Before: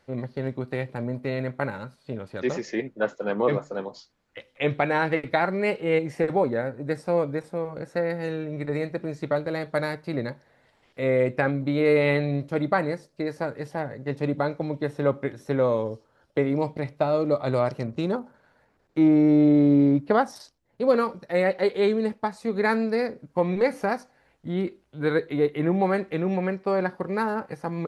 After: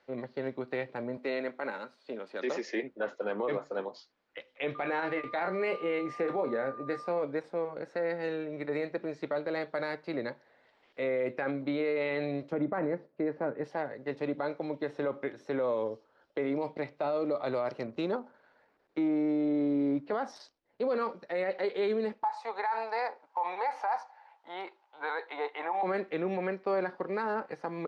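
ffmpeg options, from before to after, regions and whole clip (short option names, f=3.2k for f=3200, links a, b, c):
-filter_complex "[0:a]asettb=1/sr,asplit=3[a][b][c];[a]atrim=end=1.174[d];[b]atrim=start=1.17:end=2.83,asetpts=PTS-STARTPTS,afade=t=in:d=0.004:c=qsin,afade=t=out:st=1.656:d=0.004:c=qsin,highpass=f=200:w=0.5412,highpass=f=200:w=1.3066,highshelf=f=4.1k:g=5[e];[c]atrim=start=2.826[f];[d][e]acrossfade=d=0.004:c1=hsin:c2=qsin[g];[g][f]acrossfade=d=0.004:c1=qsin:c2=hsin,asettb=1/sr,asplit=3[h][i][j];[h]atrim=end=4.754[k];[i]atrim=start=4.75:end=7.22,asetpts=PTS-STARTPTS,afade=t=in:d=0.004:c=qsin,afade=t=out:st=2.466:d=0.004:c=qsin,aeval=exprs='val(0)+0.0141*sin(2*PI*1200*n/s)':c=same,asplit=2[l][m];[m]adelay=22,volume=-9.5dB[n];[l][n]amix=inputs=2:normalize=0,atrim=end_sample=108927[o];[j]atrim=start=7.216[p];[k][o]acrossfade=d=0.004:c1=hsin:c2=qsin[q];[q][p]acrossfade=d=0.004:c1=qsin:c2=hsin,asettb=1/sr,asplit=3[r][s][t];[r]atrim=end=12.524[u];[s]atrim=start=12.52:end=13.64,asetpts=PTS-STARTPTS,afade=t=in:d=0.004:c=qsin,afade=t=out:st=1.116:d=0.004:c=qsin,highpass=160,lowpass=2.7k,aemphasis=mode=reproduction:type=riaa[v];[t]atrim=start=13.636[w];[u][v]acrossfade=d=0.004:c1=hsin:c2=qsin[x];[x][w]acrossfade=d=0.004:c1=qsin:c2=hsin,asettb=1/sr,asplit=3[y][z][aa];[y]atrim=end=22.234[ab];[z]atrim=start=22.23:end=25.83,asetpts=PTS-STARTPTS,afade=t=in:d=0.004:c=qsin,afade=t=out:st=3.596:d=0.004:c=qsin,highpass=f=860:t=q:w=9,acompressor=threshold=-17dB:ratio=4:attack=3.2:release=140:knee=1:detection=peak[ac];[aa]atrim=start=25.826[ad];[ab][ac]acrossfade=d=0.004:c1=hsin:c2=qsin[ae];[ae][ad]acrossfade=d=0.004:c1=qsin:c2=hsin,acrossover=split=250 5600:gain=0.158 1 0.0708[af][ag][ah];[af][ag][ah]amix=inputs=3:normalize=0,alimiter=limit=-20.5dB:level=0:latency=1:release=31,volume=-2.5dB"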